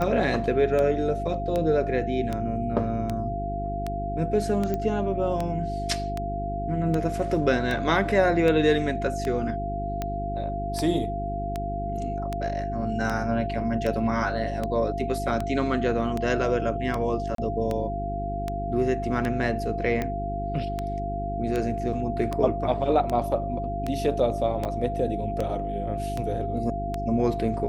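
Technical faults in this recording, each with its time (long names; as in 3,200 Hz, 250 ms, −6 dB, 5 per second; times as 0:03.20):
mains hum 50 Hz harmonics 8 −32 dBFS
scratch tick 78 rpm −15 dBFS
whistle 690 Hz −30 dBFS
0:04.74: click −16 dBFS
0:17.35–0:17.38: drop-out 33 ms
0:24.65: drop-out 4.4 ms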